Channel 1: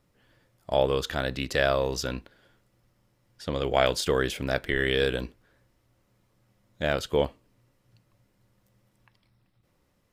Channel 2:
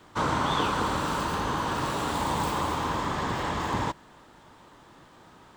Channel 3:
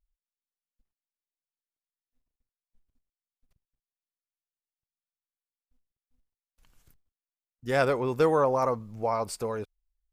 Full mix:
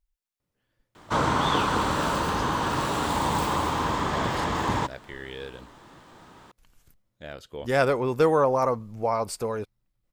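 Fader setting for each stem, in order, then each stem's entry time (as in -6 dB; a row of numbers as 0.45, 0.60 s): -13.5, +2.5, +2.5 dB; 0.40, 0.95, 0.00 s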